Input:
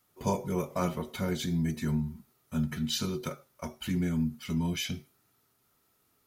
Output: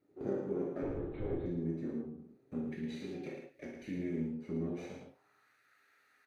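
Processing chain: comb filter that takes the minimum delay 0.47 ms; 2.67–4.28 s: resonant high shelf 1.6 kHz +9.5 dB, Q 3; compression 2.5:1, threshold -47 dBFS, peak gain reduction 18 dB; band-pass sweep 350 Hz -> 1.6 kHz, 4.61–5.50 s; 0.82–1.46 s: LPC vocoder at 8 kHz whisper; delay 110 ms -6 dB; gated-style reverb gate 90 ms flat, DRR -1 dB; trim +11 dB

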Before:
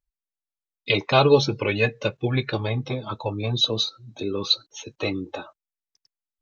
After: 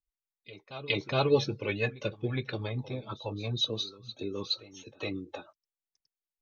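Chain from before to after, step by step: reverse echo 416 ms -16 dB; rotary cabinet horn 6.3 Hz; trim -7 dB

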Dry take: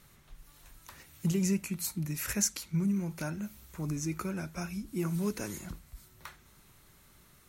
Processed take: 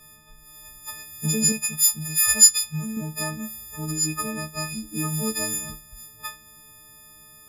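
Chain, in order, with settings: partials quantised in pitch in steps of 6 st; 1.52–2.97 s: peaking EQ 290 Hz -11.5 dB 1 oct; tape noise reduction on one side only decoder only; trim +4 dB

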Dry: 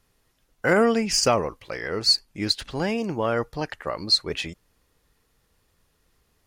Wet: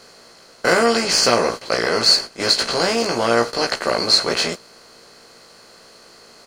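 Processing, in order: spectral levelling over time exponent 0.4; bass shelf 250 Hz -10 dB; gate -26 dBFS, range -13 dB; doubling 17 ms -3 dB

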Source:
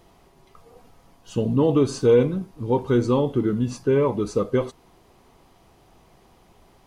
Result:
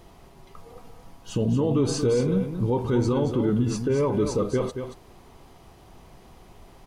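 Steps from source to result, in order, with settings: bass shelf 120 Hz +5 dB; peak limiter -19 dBFS, peak gain reduction 11 dB; delay 228 ms -8 dB; trim +3 dB

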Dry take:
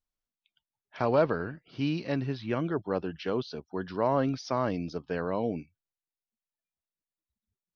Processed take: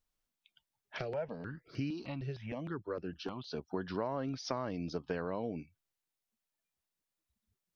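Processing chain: compression 6:1, threshold -38 dBFS, peak gain reduction 17.5 dB; 0.98–3.52 s: stepped phaser 6.5 Hz 260–3500 Hz; trim +4.5 dB

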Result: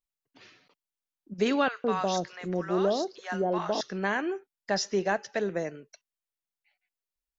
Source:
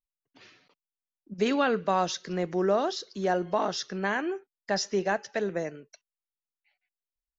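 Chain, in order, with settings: 1.68–3.81 s: three bands offset in time mids, highs, lows 30/160 ms, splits 870/5000 Hz

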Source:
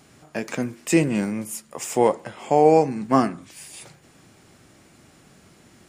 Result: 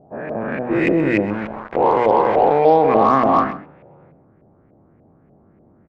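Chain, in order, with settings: every event in the spectrogram widened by 480 ms; level-controlled noise filter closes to 570 Hz, open at -7.5 dBFS; resonant high shelf 4.8 kHz -6.5 dB, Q 1.5; hum notches 60/120/180/240/300/360 Hz; 1.30–2.59 s: small samples zeroed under -21.5 dBFS; LFO low-pass saw up 3.4 Hz 590–2300 Hz; Chebyshev shaper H 8 -33 dB, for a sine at 3 dBFS; on a send: delay 129 ms -15 dB; on the sum: trim -5 dB

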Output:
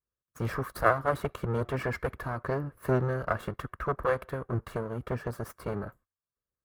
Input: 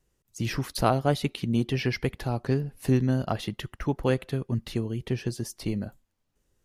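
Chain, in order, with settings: comb filter that takes the minimum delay 1.8 ms; high-pass 47 Hz; gate -57 dBFS, range -19 dB; FFT filter 830 Hz 0 dB, 1.3 kHz +10 dB, 2.8 kHz -11 dB, 5.8 kHz -14 dB, 13 kHz -4 dB

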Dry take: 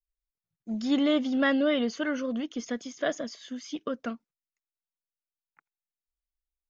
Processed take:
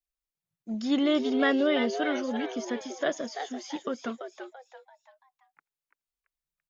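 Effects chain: bass shelf 68 Hz -9 dB; on a send: frequency-shifting echo 337 ms, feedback 38%, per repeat +130 Hz, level -8 dB

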